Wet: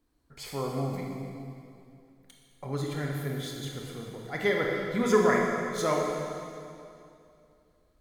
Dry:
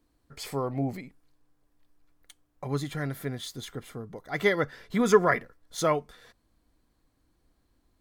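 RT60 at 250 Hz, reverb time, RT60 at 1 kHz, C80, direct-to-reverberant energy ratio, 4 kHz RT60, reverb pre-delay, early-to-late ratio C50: 2.7 s, 2.6 s, 2.5 s, 2.0 dB, −1.0 dB, 2.3 s, 21 ms, 0.5 dB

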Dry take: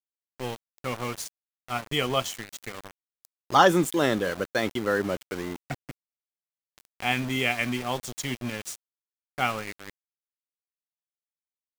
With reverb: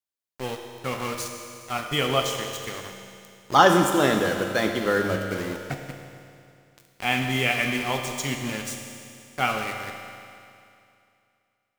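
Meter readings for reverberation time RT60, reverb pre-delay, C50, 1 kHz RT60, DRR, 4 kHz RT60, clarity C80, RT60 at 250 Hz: 2.5 s, 8 ms, 4.5 dB, 2.5 s, 3.0 dB, 2.5 s, 5.5 dB, 2.5 s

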